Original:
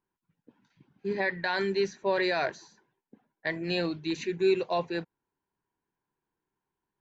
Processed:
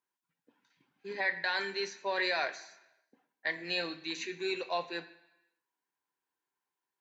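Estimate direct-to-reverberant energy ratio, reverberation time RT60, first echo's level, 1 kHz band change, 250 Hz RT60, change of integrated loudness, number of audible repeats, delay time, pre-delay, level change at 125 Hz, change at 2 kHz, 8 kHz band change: 7.5 dB, 1.0 s, no echo, -3.5 dB, 0.95 s, -4.5 dB, no echo, no echo, 3 ms, -16.0 dB, -0.5 dB, no reading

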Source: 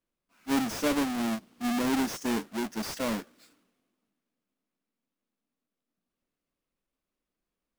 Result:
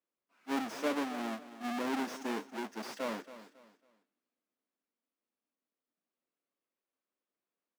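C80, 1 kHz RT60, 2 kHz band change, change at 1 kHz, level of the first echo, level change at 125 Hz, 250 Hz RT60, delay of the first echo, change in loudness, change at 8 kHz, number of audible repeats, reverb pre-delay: no reverb, no reverb, -5.0 dB, -4.0 dB, -14.5 dB, -14.5 dB, no reverb, 275 ms, -7.0 dB, -11.5 dB, 3, no reverb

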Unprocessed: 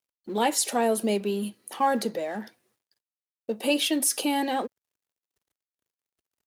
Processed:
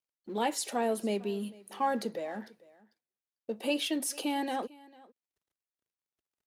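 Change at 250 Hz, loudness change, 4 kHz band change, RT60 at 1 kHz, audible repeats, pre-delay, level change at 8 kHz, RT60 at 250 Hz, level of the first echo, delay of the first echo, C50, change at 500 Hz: -6.0 dB, -7.0 dB, -7.5 dB, no reverb, 1, no reverb, -10.0 dB, no reverb, -22.5 dB, 448 ms, no reverb, -6.0 dB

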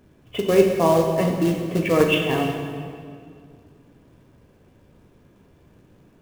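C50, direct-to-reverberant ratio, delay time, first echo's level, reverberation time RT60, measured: 3.5 dB, 1.0 dB, no echo, no echo, 2.2 s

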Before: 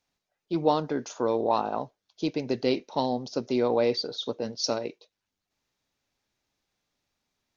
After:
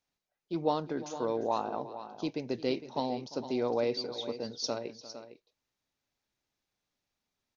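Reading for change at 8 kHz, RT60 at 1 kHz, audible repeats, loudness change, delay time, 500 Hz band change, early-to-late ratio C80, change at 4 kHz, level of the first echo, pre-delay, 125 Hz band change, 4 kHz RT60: no reading, no reverb, 2, -6.0 dB, 349 ms, -5.5 dB, no reverb, -5.5 dB, -18.0 dB, no reverb, -6.0 dB, no reverb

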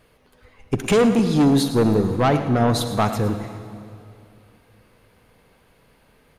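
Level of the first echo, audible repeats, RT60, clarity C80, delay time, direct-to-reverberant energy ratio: -13.0 dB, 1, 2.6 s, 8.5 dB, 109 ms, 8.0 dB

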